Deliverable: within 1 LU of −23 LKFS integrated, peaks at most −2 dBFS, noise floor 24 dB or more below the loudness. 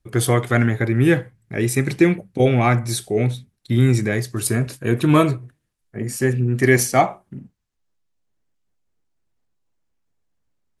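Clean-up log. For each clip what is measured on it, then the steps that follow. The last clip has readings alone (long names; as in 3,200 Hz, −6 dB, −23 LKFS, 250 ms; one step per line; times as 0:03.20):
integrated loudness −19.0 LKFS; sample peak −1.5 dBFS; target loudness −23.0 LKFS
→ level −4 dB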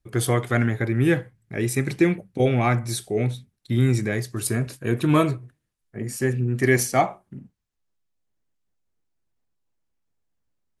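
integrated loudness −23.0 LKFS; sample peak −5.5 dBFS; background noise floor −78 dBFS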